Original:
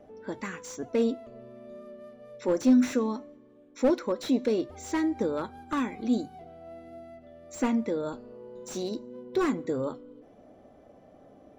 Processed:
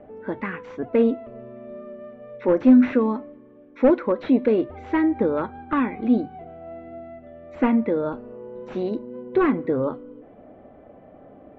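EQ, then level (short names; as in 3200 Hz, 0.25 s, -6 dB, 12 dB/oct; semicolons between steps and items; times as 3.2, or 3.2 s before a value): LPF 2600 Hz 24 dB/oct; +7.0 dB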